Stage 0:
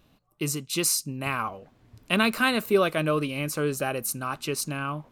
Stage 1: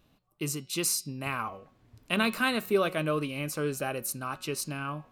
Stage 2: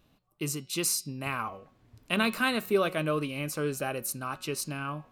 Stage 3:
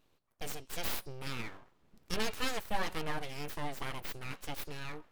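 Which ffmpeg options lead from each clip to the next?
-af "bandreject=f=183.9:t=h:w=4,bandreject=f=367.8:t=h:w=4,bandreject=f=551.7:t=h:w=4,bandreject=f=735.6:t=h:w=4,bandreject=f=919.5:t=h:w=4,bandreject=f=1103.4:t=h:w=4,bandreject=f=1287.3:t=h:w=4,bandreject=f=1471.2:t=h:w=4,bandreject=f=1655.1:t=h:w=4,bandreject=f=1839:t=h:w=4,bandreject=f=2022.9:t=h:w=4,bandreject=f=2206.8:t=h:w=4,bandreject=f=2390.7:t=h:w=4,bandreject=f=2574.6:t=h:w=4,bandreject=f=2758.5:t=h:w=4,bandreject=f=2942.4:t=h:w=4,bandreject=f=3126.3:t=h:w=4,bandreject=f=3310.2:t=h:w=4,bandreject=f=3494.1:t=h:w=4,bandreject=f=3678:t=h:w=4,bandreject=f=3861.9:t=h:w=4,bandreject=f=4045.8:t=h:w=4,bandreject=f=4229.7:t=h:w=4,bandreject=f=4413.6:t=h:w=4,bandreject=f=4597.5:t=h:w=4,bandreject=f=4781.4:t=h:w=4,bandreject=f=4965.3:t=h:w=4,bandreject=f=5149.2:t=h:w=4,bandreject=f=5333.1:t=h:w=4,bandreject=f=5517:t=h:w=4,volume=0.631"
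-af anull
-af "aeval=exprs='abs(val(0))':c=same,volume=0.596"

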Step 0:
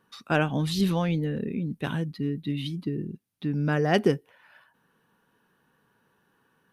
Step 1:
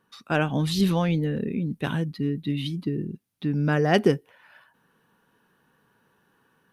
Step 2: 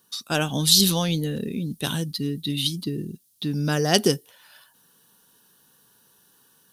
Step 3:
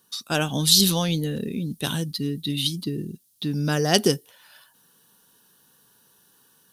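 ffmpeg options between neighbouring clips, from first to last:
-af "dynaudnorm=f=280:g=3:m=1.58,volume=0.841"
-af "aexciter=amount=9.2:drive=3.2:freq=3300,volume=0.891"
-ar 44100 -c:a libvorbis -b:a 192k

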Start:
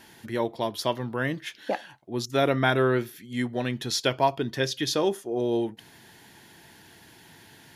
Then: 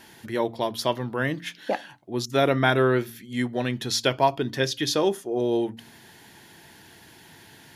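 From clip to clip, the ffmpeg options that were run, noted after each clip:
-af "bandreject=f=57.59:t=h:w=4,bandreject=f=115.18:t=h:w=4,bandreject=f=172.77:t=h:w=4,bandreject=f=230.36:t=h:w=4,bandreject=f=287.95:t=h:w=4,volume=1.26"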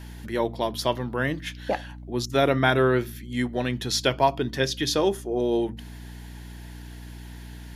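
-af "aeval=exprs='val(0)+0.0112*(sin(2*PI*60*n/s)+sin(2*PI*2*60*n/s)/2+sin(2*PI*3*60*n/s)/3+sin(2*PI*4*60*n/s)/4+sin(2*PI*5*60*n/s)/5)':c=same"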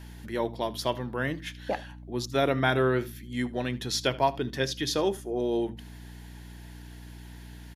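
-af "aecho=1:1:77:0.0944,volume=0.631"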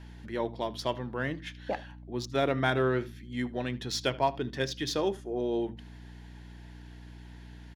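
-af "adynamicsmooth=sensitivity=4.5:basefreq=6100,volume=0.75"

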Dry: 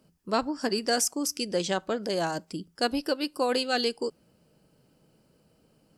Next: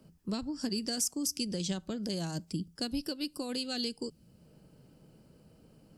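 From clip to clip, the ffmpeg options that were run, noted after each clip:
-filter_complex "[0:a]acompressor=threshold=0.0398:ratio=2.5,lowshelf=f=320:g=8,acrossover=split=240|3000[s0][s1][s2];[s1]acompressor=threshold=0.00224:ratio=2[s3];[s0][s3][s2]amix=inputs=3:normalize=0"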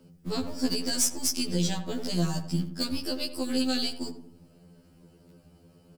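-filter_complex "[0:a]asplit=2[s0][s1];[s1]acrusher=bits=5:dc=4:mix=0:aa=0.000001,volume=0.631[s2];[s0][s2]amix=inputs=2:normalize=0,asplit=2[s3][s4];[s4]adelay=86,lowpass=f=1300:p=1,volume=0.376,asplit=2[s5][s6];[s6]adelay=86,lowpass=f=1300:p=1,volume=0.51,asplit=2[s7][s8];[s8]adelay=86,lowpass=f=1300:p=1,volume=0.51,asplit=2[s9][s10];[s10]adelay=86,lowpass=f=1300:p=1,volume=0.51,asplit=2[s11][s12];[s12]adelay=86,lowpass=f=1300:p=1,volume=0.51,asplit=2[s13][s14];[s14]adelay=86,lowpass=f=1300:p=1,volume=0.51[s15];[s3][s5][s7][s9][s11][s13][s15]amix=inputs=7:normalize=0,afftfilt=real='re*2*eq(mod(b,4),0)':imag='im*2*eq(mod(b,4),0)':win_size=2048:overlap=0.75,volume=1.78"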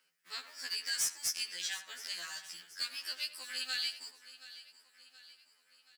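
-af "highpass=f=1800:t=q:w=3,asoftclip=type=hard:threshold=0.0891,aecho=1:1:725|1450|2175|2900:0.158|0.0792|0.0396|0.0198,volume=0.531"

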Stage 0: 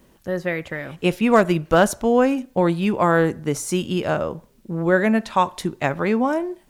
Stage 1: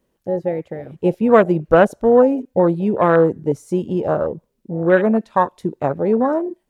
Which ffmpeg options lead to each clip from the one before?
-af "afwtdn=0.0794,equalizer=f=480:t=o:w=0.77:g=5.5,volume=1.12"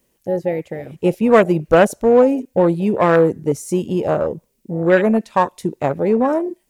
-filter_complex "[0:a]asplit=2[s0][s1];[s1]asoftclip=type=tanh:threshold=0.224,volume=0.299[s2];[s0][s2]amix=inputs=2:normalize=0,aexciter=amount=2.5:drive=3.7:freq=2000,volume=0.891"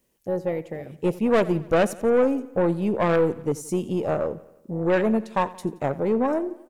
-af "aeval=exprs='(tanh(2.51*val(0)+0.25)-tanh(0.25))/2.51':c=same,aecho=1:1:87|174|261|348|435:0.112|0.0617|0.0339|0.0187|0.0103,volume=0.562"

